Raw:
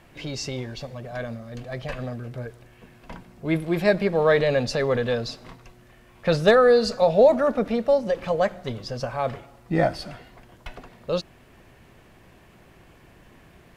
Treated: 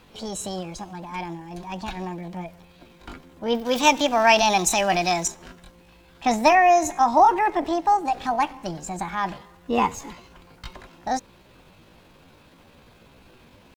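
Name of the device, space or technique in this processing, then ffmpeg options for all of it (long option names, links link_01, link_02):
chipmunk voice: -filter_complex "[0:a]asetrate=64194,aresample=44100,atempo=0.686977,asettb=1/sr,asplit=3[link_01][link_02][link_03];[link_01]atrim=end=3.654[link_04];[link_02]atrim=start=3.65:end=5.28,asetpts=PTS-STARTPTS,afade=type=in:duration=0.004:curve=qsin,afade=type=out:start_time=1.626:duration=0.004:curve=qsin,highshelf=frequency=2200:gain=11.5[link_05];[link_03]atrim=start=5.276[link_06];[link_04][link_05]acrossfade=duration=0.004:curve1=hsin:curve2=qsin[link_07];[link_07][link_06]acrossfade=duration=0.004:curve1=qsin:curve2=hsin"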